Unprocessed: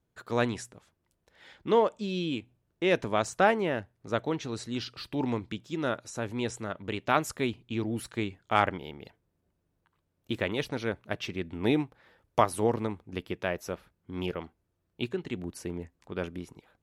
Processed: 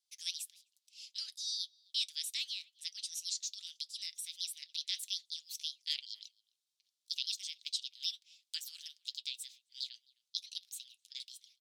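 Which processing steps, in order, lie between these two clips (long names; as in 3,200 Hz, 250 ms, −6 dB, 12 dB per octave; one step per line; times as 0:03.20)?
Butterworth high-pass 2,400 Hz 36 dB per octave
de-essing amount 75%
low-pass filter 6,300 Hz 12 dB per octave
in parallel at +0.5 dB: downward compressor, threshold −50 dBFS, peak gain reduction 17.5 dB
on the sum: change of speed 1.45×
flanger 0.14 Hz, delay 3.8 ms, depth 1.9 ms, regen −65%
far-end echo of a speakerphone 260 ms, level −24 dB
level +6 dB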